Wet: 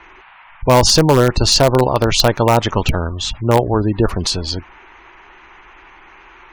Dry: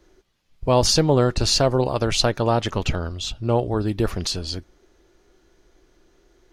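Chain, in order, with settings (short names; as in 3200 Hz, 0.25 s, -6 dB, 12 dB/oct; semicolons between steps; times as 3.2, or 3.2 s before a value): band noise 750–2600 Hz -52 dBFS; bell 940 Hz +5 dB 0.5 oct; spectral gate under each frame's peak -30 dB strong; in parallel at -9 dB: wrapped overs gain 9 dB; on the sum: gain +4 dB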